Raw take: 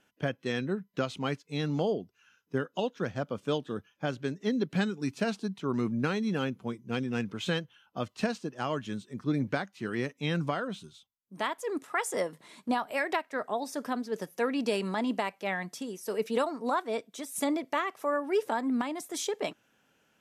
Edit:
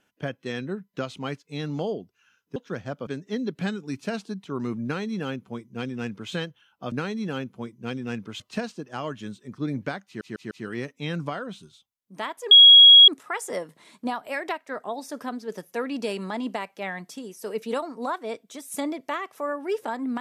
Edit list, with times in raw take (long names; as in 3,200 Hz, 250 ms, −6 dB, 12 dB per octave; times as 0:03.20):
0:02.56–0:02.86: remove
0:03.37–0:04.21: remove
0:05.98–0:07.46: duplicate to 0:08.06
0:09.72: stutter 0.15 s, 4 plays
0:11.72: insert tone 3,310 Hz −7 dBFS 0.57 s